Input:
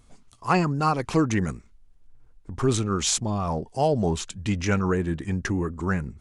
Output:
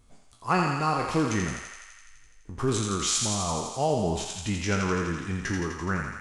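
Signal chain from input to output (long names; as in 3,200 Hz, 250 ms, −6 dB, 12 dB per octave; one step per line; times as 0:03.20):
peak hold with a decay on every bin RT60 0.40 s
feedback echo with a high-pass in the loop 84 ms, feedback 77%, high-pass 690 Hz, level −3.5 dB
level −4.5 dB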